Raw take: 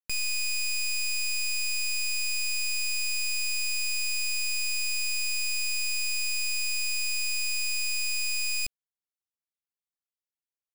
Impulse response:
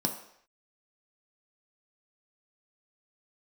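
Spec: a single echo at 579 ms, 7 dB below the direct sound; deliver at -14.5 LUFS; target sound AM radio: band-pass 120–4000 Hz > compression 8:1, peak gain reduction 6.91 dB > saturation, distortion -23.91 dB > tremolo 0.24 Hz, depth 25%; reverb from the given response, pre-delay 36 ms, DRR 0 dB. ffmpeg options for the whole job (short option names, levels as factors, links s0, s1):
-filter_complex "[0:a]aecho=1:1:579:0.447,asplit=2[s0][s1];[1:a]atrim=start_sample=2205,adelay=36[s2];[s1][s2]afir=irnorm=-1:irlink=0,volume=0.501[s3];[s0][s3]amix=inputs=2:normalize=0,highpass=120,lowpass=4000,acompressor=threshold=0.0158:ratio=8,asoftclip=threshold=0.0237,tremolo=f=0.24:d=0.25,volume=15.8"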